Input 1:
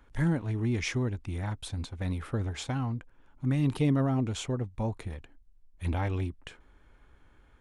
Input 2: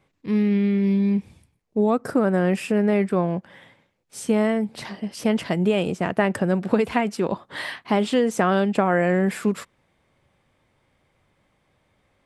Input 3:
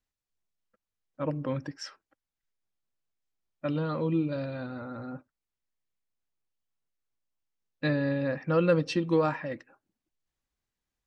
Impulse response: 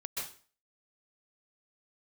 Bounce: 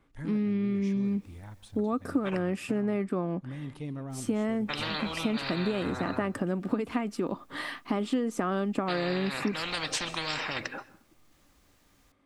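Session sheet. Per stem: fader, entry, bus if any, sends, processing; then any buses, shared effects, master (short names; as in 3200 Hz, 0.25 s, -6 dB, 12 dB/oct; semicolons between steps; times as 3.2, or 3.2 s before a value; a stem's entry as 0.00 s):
-13.0 dB, 0.00 s, send -15.5 dB, dry
-6.0 dB, 0.00 s, no send, small resonant body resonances 280/1200 Hz, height 12 dB
-1.5 dB, 1.05 s, muted 2.39–4.1, send -18 dB, spectral compressor 10:1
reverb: on, RT60 0.40 s, pre-delay 0.117 s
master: compressor 2.5:1, threshold -28 dBFS, peak gain reduction 10.5 dB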